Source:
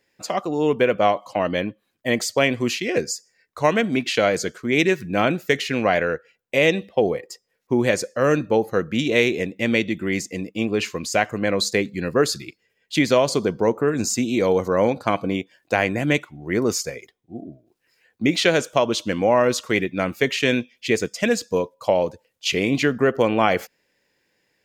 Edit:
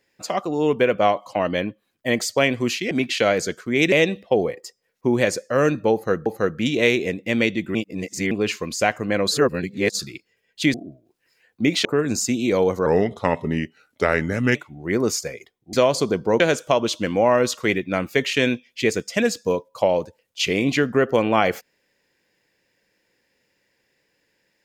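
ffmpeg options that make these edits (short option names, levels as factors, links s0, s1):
-filter_complex "[0:a]asplit=14[s0][s1][s2][s3][s4][s5][s6][s7][s8][s9][s10][s11][s12][s13];[s0]atrim=end=2.912[s14];[s1]atrim=start=3.878:end=4.892[s15];[s2]atrim=start=6.578:end=8.922[s16];[s3]atrim=start=8.588:end=10.082[s17];[s4]atrim=start=10.078:end=10.642,asetpts=PTS-STARTPTS,areverse[s18];[s5]atrim=start=10.638:end=11.642[s19];[s6]atrim=start=11.638:end=12.322,asetpts=PTS-STARTPTS,areverse[s20];[s7]atrim=start=12.318:end=13.072[s21];[s8]atrim=start=17.348:end=18.462[s22];[s9]atrim=start=13.738:end=14.754[s23];[s10]atrim=start=14.75:end=16.17,asetpts=PTS-STARTPTS,asetrate=37044,aresample=44100[s24];[s11]atrim=start=16.166:end=17.352[s25];[s12]atrim=start=13.068:end=13.742[s26];[s13]atrim=start=18.458[s27];[s14][s15]acrossfade=d=0.004:c1=hsin:c2=hsin[s28];[s28][s16]acrossfade=d=0.004:c1=hsin:c2=hsin[s29];[s29][s17]acrossfade=d=0.004:c1=hsin:c2=hsin[s30];[s30][s18]acrossfade=d=0.004:c1=hsin:c2=hsin[s31];[s31][s19]acrossfade=d=0.004:c1=hsin:c2=hsin[s32];[s32][s20]acrossfade=d=0.004:c1=hsin:c2=hsin[s33];[s33][s21]acrossfade=d=0.004:c1=hsin:c2=hsin[s34];[s34][s22]acrossfade=d=0.004:c1=hsin:c2=hsin[s35];[s35][s23]acrossfade=d=0.004:c1=hsin:c2=hsin[s36];[s36][s24]acrossfade=d=0.004:c1=hsin:c2=hsin[s37];[s37][s25]acrossfade=d=0.004:c1=hsin:c2=hsin[s38];[s38][s26]acrossfade=d=0.004:c1=hsin:c2=hsin[s39];[s39][s27]acrossfade=d=0.004:c1=hsin:c2=hsin"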